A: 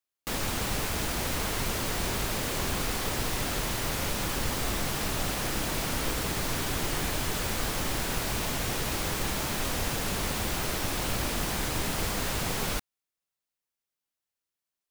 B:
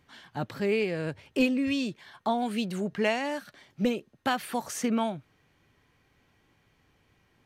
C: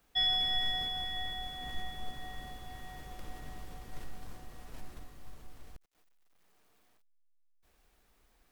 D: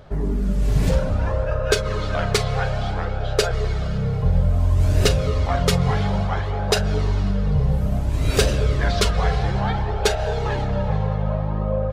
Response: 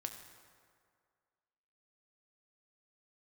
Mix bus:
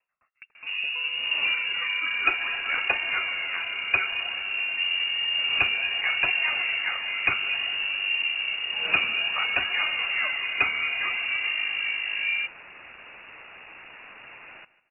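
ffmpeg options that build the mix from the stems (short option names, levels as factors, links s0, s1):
-filter_complex "[0:a]asoftclip=type=hard:threshold=0.0376,adelay=1850,volume=0.355,asplit=2[s0][s1];[s1]volume=0.126[s2];[1:a]aeval=exprs='val(0)*pow(10,-36*if(lt(mod(4.8*n/s,1),2*abs(4.8)/1000),1-mod(4.8*n/s,1)/(2*abs(4.8)/1000),(mod(4.8*n/s,1)-2*abs(4.8)/1000)/(1-2*abs(4.8)/1000))/20)':c=same,volume=0.299,asplit=2[s3][s4];[s4]volume=0.106[s5];[2:a]acompressor=threshold=0.0112:ratio=6,adelay=800,volume=1.41[s6];[3:a]adelay=550,volume=0.794[s7];[4:a]atrim=start_sample=2205[s8];[s5][s8]afir=irnorm=-1:irlink=0[s9];[s2]aecho=0:1:150|300|450|600|750:1|0.35|0.122|0.0429|0.015[s10];[s0][s3][s6][s7][s9][s10]amix=inputs=6:normalize=0,highpass=f=180:p=1,lowpass=f=2500:t=q:w=0.5098,lowpass=f=2500:t=q:w=0.6013,lowpass=f=2500:t=q:w=0.9,lowpass=f=2500:t=q:w=2.563,afreqshift=-2900"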